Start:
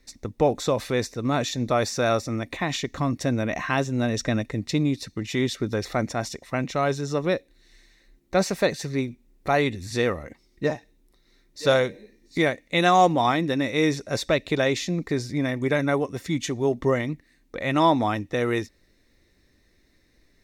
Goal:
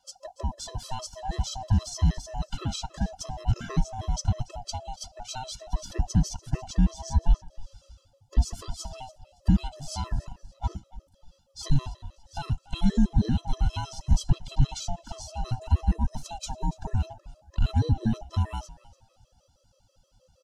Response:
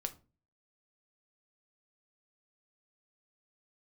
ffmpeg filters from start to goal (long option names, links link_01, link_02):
-filter_complex "[0:a]afftfilt=real='real(if(lt(b,1008),b+24*(1-2*mod(floor(b/24),2)),b),0)':imag='imag(if(lt(b,1008),b+24*(1-2*mod(floor(b/24),2)),b),0)':win_size=2048:overlap=0.75,lowpass=5900,acrossover=split=580[link_01][link_02];[link_02]crystalizer=i=3.5:c=0[link_03];[link_01][link_03]amix=inputs=2:normalize=0,equalizer=frequency=2100:width=1.2:gain=-13.5,acompressor=threshold=-26dB:ratio=10,asubboost=boost=11.5:cutoff=190,acontrast=73,asplit=4[link_04][link_05][link_06][link_07];[link_05]adelay=285,afreqshift=-44,volume=-19dB[link_08];[link_06]adelay=570,afreqshift=-88,volume=-28.4dB[link_09];[link_07]adelay=855,afreqshift=-132,volume=-37.7dB[link_10];[link_04][link_08][link_09][link_10]amix=inputs=4:normalize=0,afftfilt=real='re*gt(sin(2*PI*6.3*pts/sr)*(1-2*mod(floor(b*sr/1024/340),2)),0)':imag='im*gt(sin(2*PI*6.3*pts/sr)*(1-2*mod(floor(b*sr/1024/340),2)),0)':win_size=1024:overlap=0.75,volume=-8.5dB"